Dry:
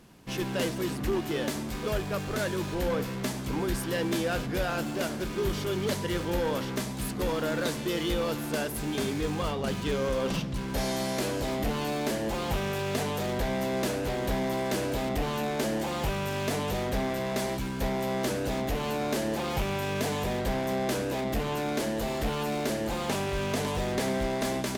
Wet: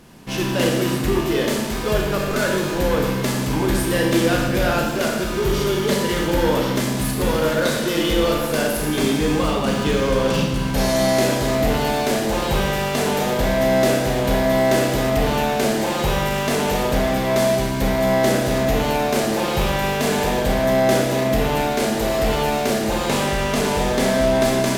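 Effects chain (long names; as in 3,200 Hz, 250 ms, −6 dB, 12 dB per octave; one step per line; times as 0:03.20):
four-comb reverb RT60 1.2 s, combs from 26 ms, DRR 0 dB
level +7.5 dB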